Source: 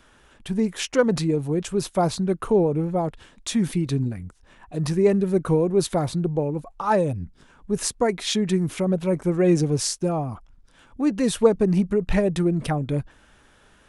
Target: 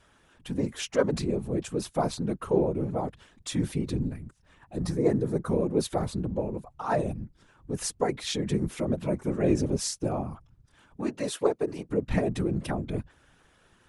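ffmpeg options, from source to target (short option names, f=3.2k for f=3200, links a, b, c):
-filter_complex "[0:a]asettb=1/sr,asplit=3[a][b][c];[a]atrim=end=4.764[d];[b]atrim=start=4.76:end=5.51,asetpts=PTS-STARTPTS,afade=t=in:d=0.004:c=qsin,afade=t=out:st=0.746:d=0.004:c=qsin,equalizer=f=2.7k:t=o:w=0.39:g=-11[e];[c]atrim=start=5.506[f];[d][e]acrossfade=d=0.004:c1=hsin:c2=qsin[g];[g][f]acrossfade=d=0.004:c1=qsin:c2=hsin,asettb=1/sr,asplit=3[h][i][j];[h]atrim=end=11.024[k];[i]atrim=start=11.02:end=11.9,asetpts=PTS-STARTPTS,afade=t=in:d=0.004:c=qsin,afade=t=out:st=0.876:d=0.004:c=qsin,highpass=f=290:w=0.5412,highpass=f=290:w=1.3066[l];[j]atrim=start=11.896[m];[k][l]acrossfade=d=0.004:c1=hsin:c2=qsin[n];[n][m]acrossfade=d=0.004:c1=qsin:c2=hsin,afftfilt=real='hypot(re,im)*cos(2*PI*random(0))':imag='hypot(re,im)*sin(2*PI*random(1))':win_size=512:overlap=0.75"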